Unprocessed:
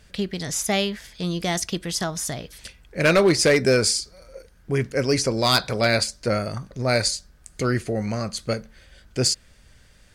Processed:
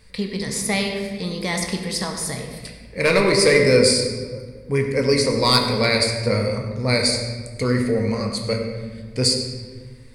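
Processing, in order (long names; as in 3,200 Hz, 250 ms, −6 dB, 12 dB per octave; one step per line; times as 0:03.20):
EQ curve with evenly spaced ripples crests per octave 0.93, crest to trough 10 dB
on a send: convolution reverb RT60 1.5 s, pre-delay 6 ms, DRR 2 dB
on the sum: level −1 dB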